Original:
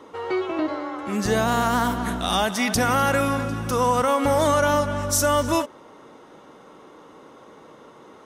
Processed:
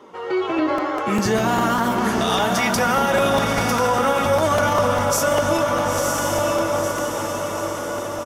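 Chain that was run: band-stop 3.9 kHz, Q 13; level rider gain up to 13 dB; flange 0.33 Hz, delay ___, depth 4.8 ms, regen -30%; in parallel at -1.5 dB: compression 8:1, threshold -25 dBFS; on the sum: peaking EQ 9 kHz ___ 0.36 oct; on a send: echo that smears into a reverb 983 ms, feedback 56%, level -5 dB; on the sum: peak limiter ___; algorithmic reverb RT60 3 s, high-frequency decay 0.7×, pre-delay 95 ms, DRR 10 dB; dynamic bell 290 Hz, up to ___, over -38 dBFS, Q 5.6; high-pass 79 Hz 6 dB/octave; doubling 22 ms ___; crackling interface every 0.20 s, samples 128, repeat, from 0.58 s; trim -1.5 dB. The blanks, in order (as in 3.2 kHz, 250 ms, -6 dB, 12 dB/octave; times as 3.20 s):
5 ms, -4.5 dB, -9 dBFS, -5 dB, -12 dB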